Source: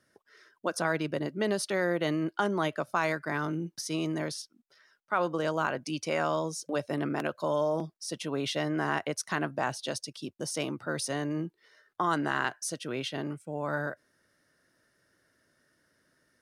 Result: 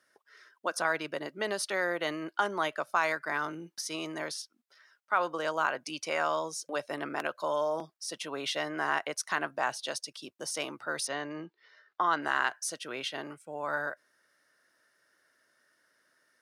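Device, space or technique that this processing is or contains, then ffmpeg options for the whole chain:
filter by subtraction: -filter_complex "[0:a]asettb=1/sr,asplit=3[s0][s1][s2];[s0]atrim=end=11.074[s3];[s1]atrim=start=11.07:end=12.22,asetpts=PTS-STARTPTS,afade=t=in:d=0.004:c=qsin,afade=t=out:st=1.146:d=0.004:c=qsin,lowpass=f=5300:w=0.5412,lowpass=f=5300:w=1.3066[s4];[s2]atrim=start=12.216[s5];[s3][s4]acrossfade=d=0.004:c1=hsin:c2=qsin[s6];[s6][s5]acrossfade=d=0.004:c1=qsin:c2=hsin,asplit=2[s7][s8];[s8]lowpass=1100,volume=-1[s9];[s7][s9]amix=inputs=2:normalize=0"

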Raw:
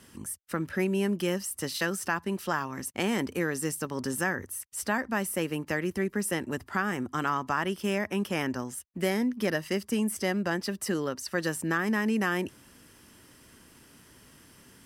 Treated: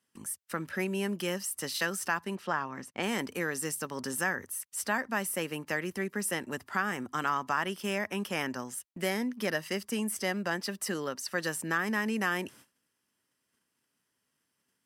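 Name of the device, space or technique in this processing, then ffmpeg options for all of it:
low shelf boost with a cut just above: -filter_complex "[0:a]highpass=150,lowshelf=f=480:g=-5.5,asettb=1/sr,asplit=3[s0][s1][s2];[s0]atrim=end=2.354[s3];[s1]atrim=start=2.35:end=3.03,asetpts=PTS-STARTPTS,afade=t=in:d=0.004:c=qsin,afade=t=out:st=0.676:d=0.004:c=qsin,aemphasis=mode=reproduction:type=75fm[s4];[s2]atrim=start=3.026[s5];[s3][s4]acrossfade=d=0.004:c1=hsin:c2=qsin[s6];[s6][s5]acrossfade=d=0.004:c1=qsin:c2=hsin,agate=range=0.0708:threshold=0.00224:ratio=16:detection=peak,lowshelf=f=94:g=6,equalizer=f=330:t=o:w=0.6:g=-3"

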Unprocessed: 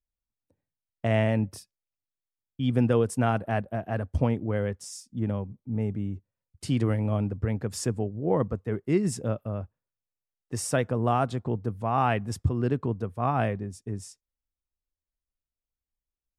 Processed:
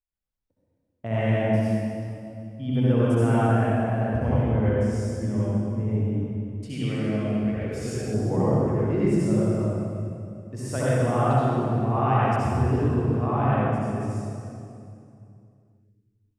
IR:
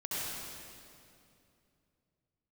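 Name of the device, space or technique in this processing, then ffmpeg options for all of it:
swimming-pool hall: -filter_complex "[1:a]atrim=start_sample=2205[s0];[0:a][s0]afir=irnorm=-1:irlink=0,highshelf=f=3000:g=-8,asettb=1/sr,asplit=3[s1][s2][s3];[s1]atrim=end=6.684[s4];[s2]atrim=start=6.68:end=8.14,asetpts=PTS-STARTPTS,afade=t=in:d=0.004:c=qsin,afade=t=out:st=1.456:d=0.004:c=qsin,equalizer=f=100:t=o:w=0.67:g=-11,equalizer=f=250:t=o:w=0.67:g=-4,equalizer=f=1000:t=o:w=0.67:g=-8,equalizer=f=2500:t=o:w=0.67:g=7[s5];[s3]atrim=start=8.136[s6];[s4][s5]acrossfade=d=0.004:c1=hsin:c2=qsin[s7];[s7][s6]acrossfade=d=0.004:c1=qsin:c2=hsin,volume=0.891"

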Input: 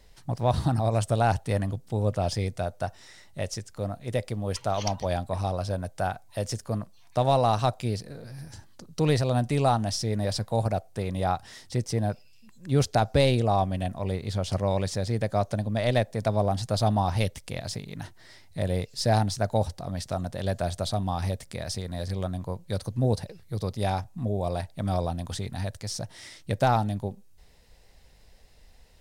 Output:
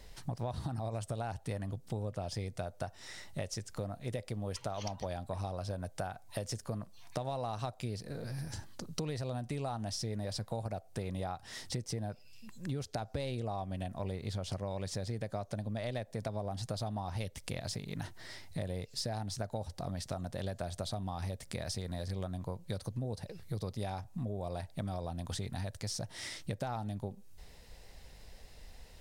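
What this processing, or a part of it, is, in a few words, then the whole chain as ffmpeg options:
serial compression, leveller first: -af "acompressor=threshold=0.0501:ratio=2,acompressor=threshold=0.0112:ratio=5,volume=1.41"

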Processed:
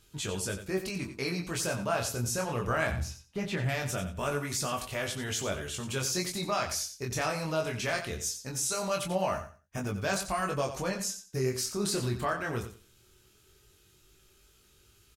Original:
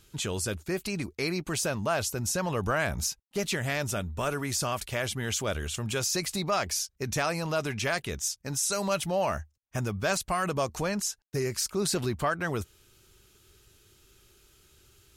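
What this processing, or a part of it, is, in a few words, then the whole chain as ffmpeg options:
double-tracked vocal: -filter_complex "[0:a]asplit=2[s0][s1];[s1]adelay=16,volume=0.282[s2];[s0][s2]amix=inputs=2:normalize=0,flanger=delay=20:depth=5.5:speed=0.2,asettb=1/sr,asplit=3[s3][s4][s5];[s3]atrim=end=2.914[s6];[s4]atrim=start=2.91:end=3.69,asetpts=PTS-STARTPTS,afade=t=in:d=0.004:c=qsin,afade=t=out:st=0.776:d=0.004:c=qsin,bass=f=250:g=3,treble=f=4000:g=-13[s7];[s5]atrim=start=3.686[s8];[s6][s7]acrossfade=d=0.004:c1=hsin:c2=qsin[s9];[s9][s8]acrossfade=d=0.004:c1=qsin:c2=hsin,aecho=1:1:90|180|270:0.299|0.0627|0.0132"

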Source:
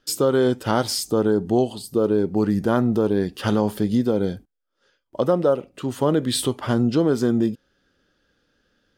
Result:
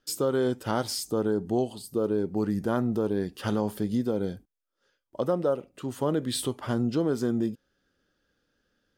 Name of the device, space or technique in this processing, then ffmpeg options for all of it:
exciter from parts: -filter_complex "[0:a]asplit=2[s0][s1];[s1]highpass=3500,asoftclip=type=tanh:threshold=0.0188,highpass=f=4200:p=1,volume=0.473[s2];[s0][s2]amix=inputs=2:normalize=0,volume=0.447"

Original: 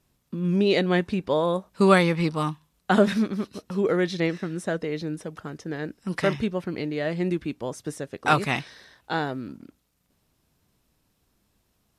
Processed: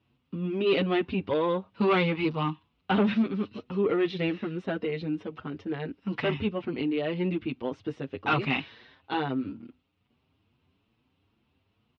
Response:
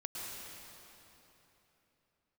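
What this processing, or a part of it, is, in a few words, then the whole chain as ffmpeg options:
barber-pole flanger into a guitar amplifier: -filter_complex "[0:a]asplit=2[s0][s1];[s1]adelay=6.8,afreqshift=2.3[s2];[s0][s2]amix=inputs=2:normalize=1,asoftclip=type=tanh:threshold=0.1,highpass=84,equalizer=f=92:t=q:w=4:g=9,equalizer=f=170:t=q:w=4:g=-4,equalizer=f=260:t=q:w=4:g=4,equalizer=f=610:t=q:w=4:g=-5,equalizer=f=1700:t=q:w=4:g=-6,equalizer=f=2800:t=q:w=4:g=6,lowpass=f=3500:w=0.5412,lowpass=f=3500:w=1.3066,volume=1.33"

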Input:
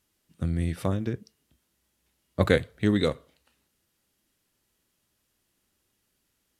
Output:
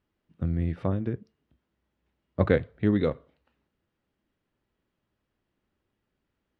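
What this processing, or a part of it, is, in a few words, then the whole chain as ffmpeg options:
phone in a pocket: -af "lowpass=3200,highshelf=f=2100:g=-10"

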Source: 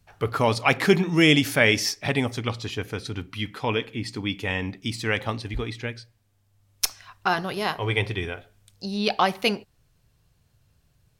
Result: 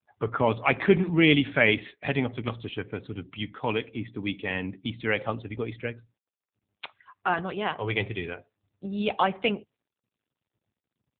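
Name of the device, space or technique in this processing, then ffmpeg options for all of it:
mobile call with aggressive noise cancelling: -filter_complex "[0:a]asplit=3[s0][s1][s2];[s0]afade=t=out:st=5.03:d=0.02[s3];[s1]equalizer=f=510:w=2.7:g=4,afade=t=in:st=5.03:d=0.02,afade=t=out:st=6.84:d=0.02[s4];[s2]afade=t=in:st=6.84:d=0.02[s5];[s3][s4][s5]amix=inputs=3:normalize=0,highpass=100,afftdn=nr=31:nf=-43,volume=0.841" -ar 8000 -c:a libopencore_amrnb -b:a 7950

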